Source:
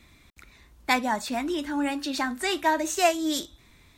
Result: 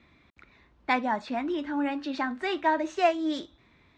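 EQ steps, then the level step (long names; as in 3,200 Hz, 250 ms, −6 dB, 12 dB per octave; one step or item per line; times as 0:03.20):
high-pass filter 150 Hz 6 dB per octave
low-pass filter 3,100 Hz 6 dB per octave
high-frequency loss of the air 160 metres
0.0 dB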